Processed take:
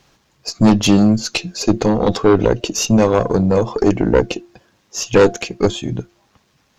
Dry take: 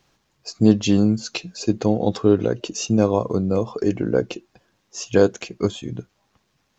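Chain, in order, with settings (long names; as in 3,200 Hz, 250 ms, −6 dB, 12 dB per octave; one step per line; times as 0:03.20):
hum removal 347.9 Hz, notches 2
harmonic generator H 5 −7 dB, 8 −13 dB, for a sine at −1 dBFS
level −2 dB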